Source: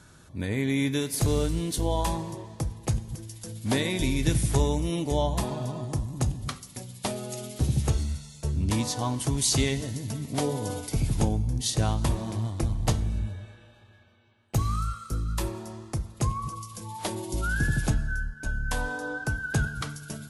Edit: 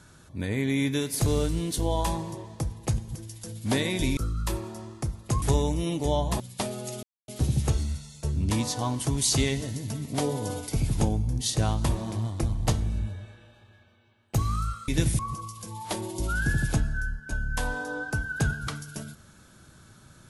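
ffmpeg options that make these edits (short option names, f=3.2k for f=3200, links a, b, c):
-filter_complex "[0:a]asplit=7[a][b][c][d][e][f][g];[a]atrim=end=4.172[h];[b]atrim=start=15.078:end=16.332[i];[c]atrim=start=4.478:end=5.462[j];[d]atrim=start=6.848:end=7.48,asetpts=PTS-STARTPTS,afade=t=out:st=0.628:d=0.004:c=hsin,apad=pad_dur=0.25[k];[e]atrim=start=7.48:end=15.082,asetpts=PTS-STARTPTS,afade=t=in:d=0.004:c=hsin[l];[f]atrim=start=4.168:end=4.482[m];[g]atrim=start=16.328[n];[h][i]acrossfade=d=0.004:c1=hsin:c2=hsin[o];[o][j]acrossfade=d=0.004:c1=hsin:c2=hsin[p];[k][l]concat=n=2:v=0:a=1[q];[p][q]acrossfade=d=0.004:c1=hsin:c2=hsin[r];[r][m]acrossfade=d=0.004:c1=hsin:c2=hsin[s];[s][n]acrossfade=d=0.004:c1=hsin:c2=hsin"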